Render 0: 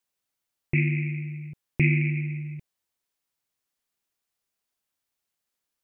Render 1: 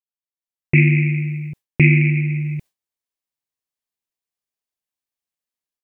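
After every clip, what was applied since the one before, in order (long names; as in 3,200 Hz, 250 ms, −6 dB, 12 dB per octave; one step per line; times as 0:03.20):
notch filter 1,400 Hz, Q 10
noise gate with hold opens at −34 dBFS
automatic gain control gain up to 14 dB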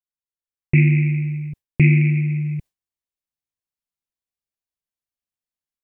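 low-shelf EQ 170 Hz +10.5 dB
level −6 dB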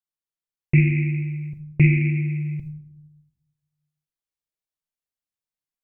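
convolution reverb RT60 0.80 s, pre-delay 6 ms, DRR 9 dB
level −3 dB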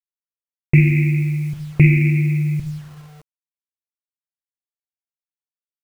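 in parallel at −0.5 dB: downward compressor 10 to 1, threshold −24 dBFS, peak gain reduction 13.5 dB
on the sum: bit-depth reduction 8 bits, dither none
level +2 dB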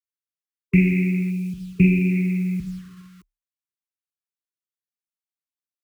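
gain on a spectral selection 0:01.31–0:02.11, 410–2,300 Hz −10 dB
linear-phase brick-wall band-stop 390–1,000 Hz
frequency shifter +33 Hz
level −4 dB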